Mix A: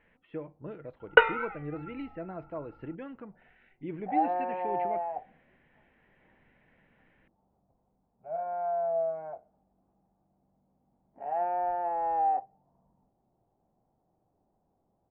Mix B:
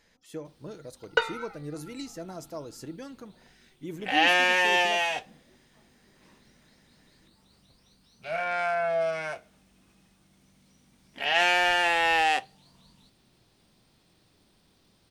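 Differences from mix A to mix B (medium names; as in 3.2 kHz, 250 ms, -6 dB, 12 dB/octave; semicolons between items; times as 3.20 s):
first sound -6.0 dB; second sound: remove four-pole ladder low-pass 870 Hz, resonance 60%; master: remove steep low-pass 2.8 kHz 48 dB/octave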